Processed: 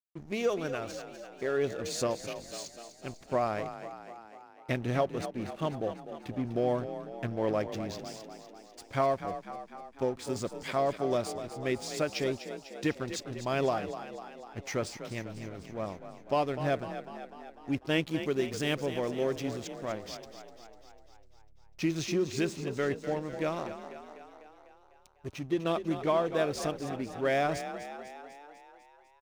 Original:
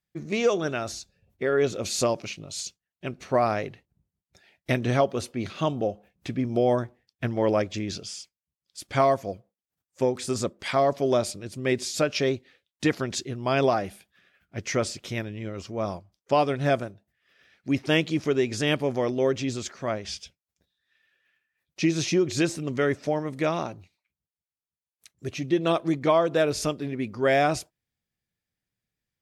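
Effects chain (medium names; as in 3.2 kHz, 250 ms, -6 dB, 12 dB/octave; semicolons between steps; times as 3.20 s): hysteresis with a dead band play -33.5 dBFS; 18.02–19.41 s: treble shelf 7.6 kHz +6.5 dB; frequency-shifting echo 249 ms, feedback 62%, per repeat +36 Hz, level -11 dB; trim -6.5 dB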